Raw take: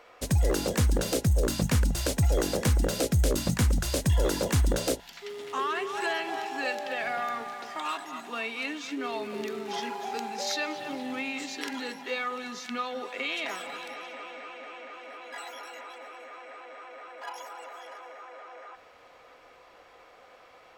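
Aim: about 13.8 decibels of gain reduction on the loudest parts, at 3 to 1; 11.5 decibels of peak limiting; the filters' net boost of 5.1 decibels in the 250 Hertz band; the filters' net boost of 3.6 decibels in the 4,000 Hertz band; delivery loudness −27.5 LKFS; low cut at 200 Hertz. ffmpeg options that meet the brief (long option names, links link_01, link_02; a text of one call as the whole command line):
ffmpeg -i in.wav -af "highpass=200,equalizer=frequency=250:width_type=o:gain=8.5,equalizer=frequency=4000:width_type=o:gain=4.5,acompressor=threshold=-40dB:ratio=3,volume=14.5dB,alimiter=limit=-17.5dB:level=0:latency=1" out.wav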